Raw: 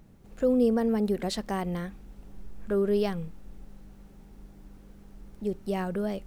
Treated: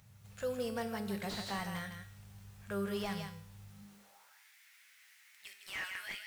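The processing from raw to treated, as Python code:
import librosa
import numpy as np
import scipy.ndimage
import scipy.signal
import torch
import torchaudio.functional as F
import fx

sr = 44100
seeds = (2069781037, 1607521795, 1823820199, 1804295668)

p1 = fx.tone_stack(x, sr, knobs='10-0-10')
p2 = fx.comb_fb(p1, sr, f0_hz=100.0, decay_s=0.59, harmonics='all', damping=0.0, mix_pct=70)
p3 = fx.filter_sweep_highpass(p2, sr, from_hz=110.0, to_hz=2000.0, start_s=3.68, end_s=4.41, q=3.6)
p4 = p3 + fx.echo_single(p3, sr, ms=158, db=-8.5, dry=0)
p5 = fx.slew_limit(p4, sr, full_power_hz=6.6)
y = F.gain(torch.from_numpy(p5), 13.0).numpy()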